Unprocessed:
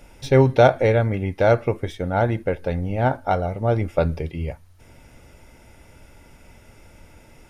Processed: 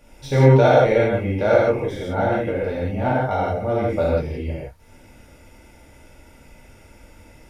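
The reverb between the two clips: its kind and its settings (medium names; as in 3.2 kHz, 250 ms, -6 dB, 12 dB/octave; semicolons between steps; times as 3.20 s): gated-style reverb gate 200 ms flat, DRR -7.5 dB; trim -7 dB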